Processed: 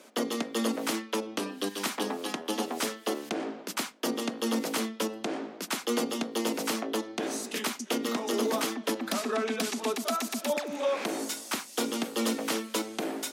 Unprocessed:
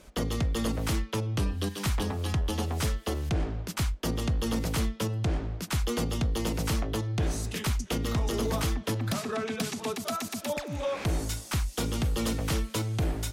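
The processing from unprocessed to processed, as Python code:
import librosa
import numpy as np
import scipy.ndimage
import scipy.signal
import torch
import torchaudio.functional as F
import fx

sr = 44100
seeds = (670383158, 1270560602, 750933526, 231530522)

y = scipy.signal.sosfilt(scipy.signal.ellip(4, 1.0, 60, 230.0, 'highpass', fs=sr, output='sos'), x)
y = F.gain(torch.from_numpy(y), 3.0).numpy()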